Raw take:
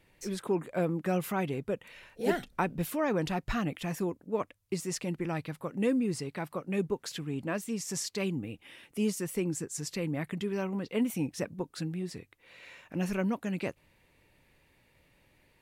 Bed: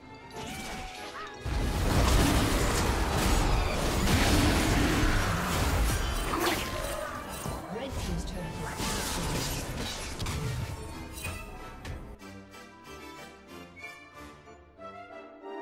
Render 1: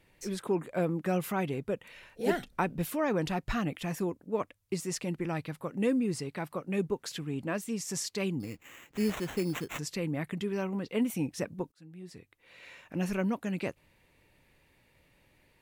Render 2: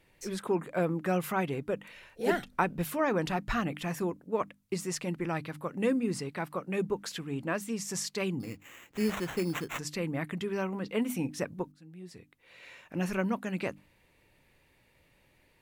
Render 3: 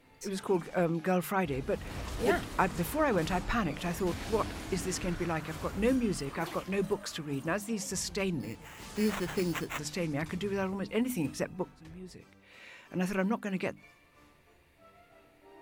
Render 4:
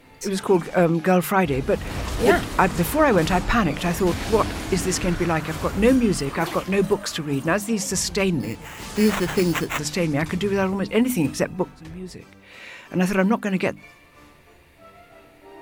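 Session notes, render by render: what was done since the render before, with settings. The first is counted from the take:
8.40–9.79 s: sample-rate reducer 4.8 kHz; 11.72–12.66 s: fade in
hum notches 50/100/150/200/250/300 Hz; dynamic bell 1.3 kHz, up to +4 dB, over -49 dBFS, Q 0.94
add bed -15 dB
trim +11 dB; peak limiter -3 dBFS, peak gain reduction 2.5 dB

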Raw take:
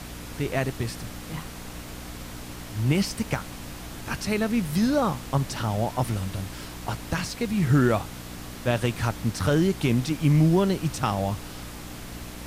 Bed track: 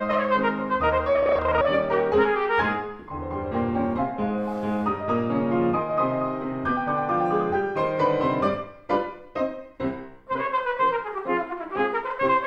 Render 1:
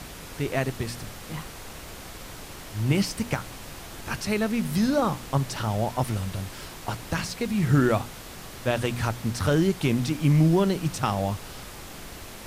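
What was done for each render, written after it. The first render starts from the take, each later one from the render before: de-hum 60 Hz, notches 5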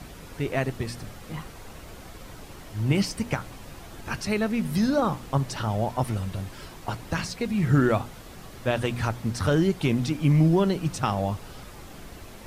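noise reduction 7 dB, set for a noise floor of -42 dBFS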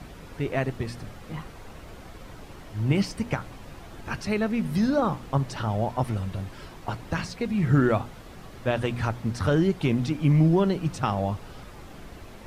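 treble shelf 4.9 kHz -8.5 dB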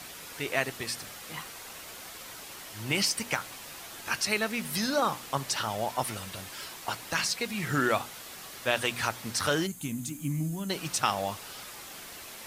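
9.66–10.70 s: time-frequency box 320–6100 Hz -16 dB; tilt EQ +4.5 dB/octave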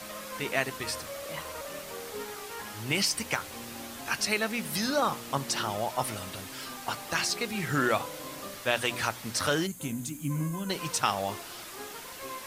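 add bed track -20 dB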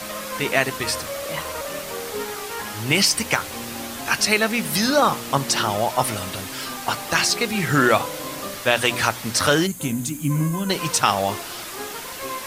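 trim +9.5 dB; peak limiter -2 dBFS, peak gain reduction 1.5 dB

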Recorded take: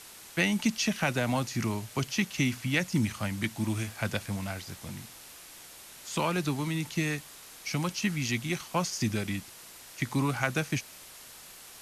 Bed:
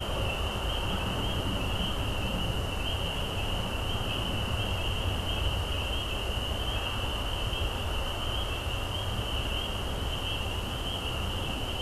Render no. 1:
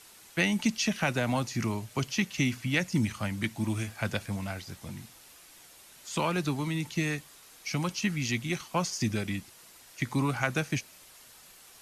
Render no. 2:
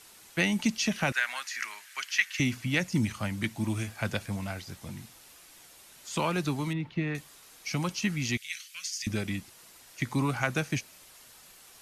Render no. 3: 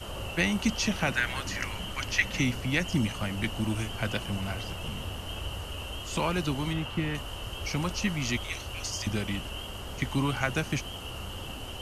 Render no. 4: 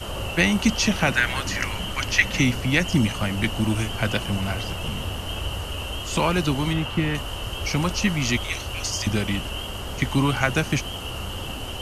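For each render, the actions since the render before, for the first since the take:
noise reduction 6 dB, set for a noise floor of -49 dBFS
1.12–2.40 s: resonant high-pass 1.7 kHz, resonance Q 3.4; 6.73–7.15 s: distance through air 380 m; 8.37–9.07 s: inverse Chebyshev high-pass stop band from 920 Hz
add bed -6.5 dB
trim +7 dB

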